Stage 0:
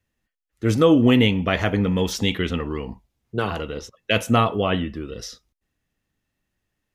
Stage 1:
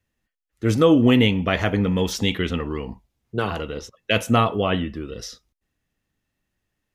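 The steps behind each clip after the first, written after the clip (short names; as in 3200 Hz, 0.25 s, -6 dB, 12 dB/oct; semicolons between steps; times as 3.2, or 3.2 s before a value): nothing audible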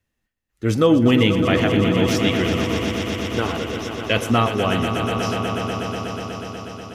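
swelling echo 0.122 s, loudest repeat 5, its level -10 dB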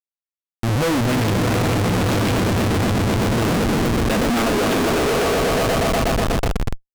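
high-pass sweep 100 Hz -> 670 Hz, 2.89–5.98; Schmitt trigger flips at -24 dBFS; Doppler distortion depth 0.31 ms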